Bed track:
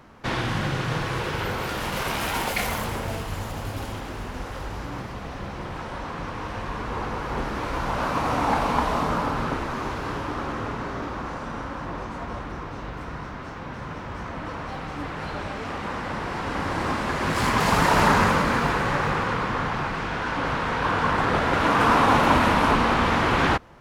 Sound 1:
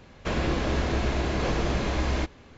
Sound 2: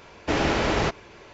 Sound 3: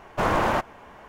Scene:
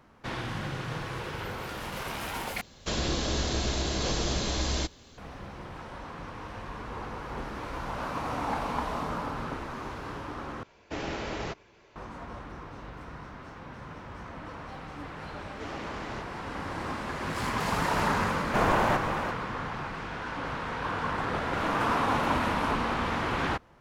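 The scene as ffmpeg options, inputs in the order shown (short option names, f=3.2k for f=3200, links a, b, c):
-filter_complex "[2:a]asplit=2[a][b];[3:a]asplit=2[c][d];[0:a]volume=-8.5dB[e];[1:a]aexciter=amount=3.8:drive=5.8:freq=3.3k[f];[c]aecho=1:1:348:0.376[g];[e]asplit=3[h][i][j];[h]atrim=end=2.614[k];[f]atrim=end=2.57,asetpts=PTS-STARTPTS,volume=-4dB[l];[i]atrim=start=5.176:end=10.634[m];[a]atrim=end=1.33,asetpts=PTS-STARTPTS,volume=-11.5dB[n];[j]atrim=start=11.956[o];[b]atrim=end=1.33,asetpts=PTS-STARTPTS,volume=-18dB,afade=t=in:d=0.004:c=hsin,afade=t=out:st=1.326:d=0.004:c=hsin,adelay=15320[p];[g]atrim=end=1.08,asetpts=PTS-STARTPTS,volume=-2.5dB,afade=t=in:d=0.004:c=hsin,afade=t=out:st=1.076:d=0.004:c=hsin,adelay=18360[q];[d]atrim=end=1.08,asetpts=PTS-STARTPTS,volume=-15dB,afade=t=in:d=0.004:c=hsin,afade=t=out:st=1.076:d=0.004:c=hsin,adelay=21380[r];[k][l]acrossfade=d=0.004:c1=hsin:c2=hsin[s];[s][m]acrossfade=d=0.004:c1=hsin:c2=hsin[t];[t][n]acrossfade=d=0.004:c1=hsin:c2=hsin[u];[u][o]acrossfade=d=0.004:c1=hsin:c2=hsin[v];[v][p][q][r]amix=inputs=4:normalize=0"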